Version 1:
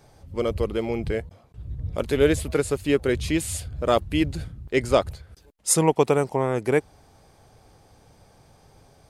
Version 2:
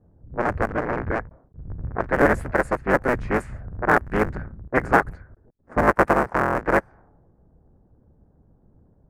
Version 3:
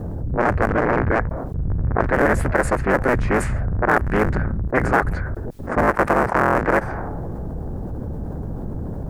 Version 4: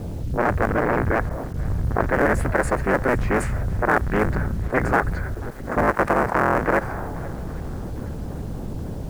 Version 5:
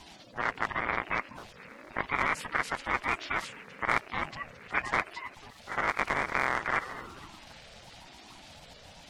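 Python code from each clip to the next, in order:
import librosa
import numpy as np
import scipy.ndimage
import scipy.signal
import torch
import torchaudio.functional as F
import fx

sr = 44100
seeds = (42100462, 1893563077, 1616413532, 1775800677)

y1 = fx.cycle_switch(x, sr, every=3, mode='inverted')
y1 = fx.high_shelf_res(y1, sr, hz=2400.0, db=-13.0, q=3.0)
y1 = fx.env_lowpass(y1, sr, base_hz=300.0, full_db=-17.5)
y2 = fx.env_flatten(y1, sr, amount_pct=70)
y2 = y2 * librosa.db_to_amplitude(-2.0)
y3 = fx.quant_dither(y2, sr, seeds[0], bits=8, dither='none')
y3 = fx.echo_swing(y3, sr, ms=813, ratio=1.5, feedback_pct=43, wet_db=-21.0)
y3 = y3 * librosa.db_to_amplitude(-2.0)
y4 = fx.spec_quant(y3, sr, step_db=30)
y4 = fx.bandpass_q(y4, sr, hz=3400.0, q=1.4)
y4 = fx.ring_lfo(y4, sr, carrier_hz=420.0, swing_pct=25, hz=0.97)
y4 = y4 * librosa.db_to_amplitude(6.0)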